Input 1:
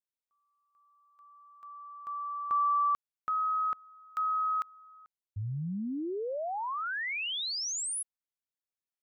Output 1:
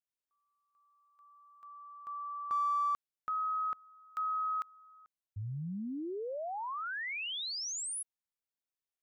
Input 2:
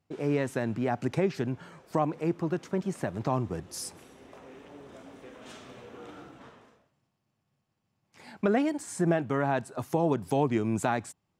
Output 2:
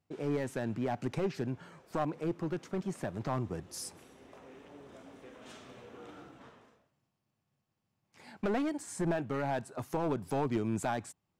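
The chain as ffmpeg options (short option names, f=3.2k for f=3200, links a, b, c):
-af "aeval=exprs='clip(val(0),-1,0.0596)':c=same,volume=-4dB"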